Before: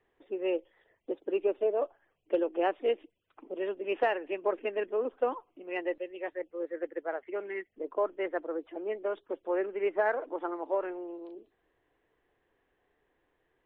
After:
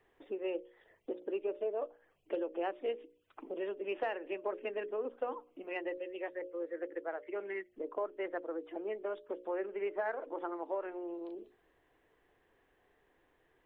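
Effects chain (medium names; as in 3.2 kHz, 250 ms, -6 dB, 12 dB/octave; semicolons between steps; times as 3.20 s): hum notches 60/120/180/240/300/360/420/480/540/600 Hz; compression 2:1, threshold -45 dBFS, peak gain reduction 12 dB; trim +3.5 dB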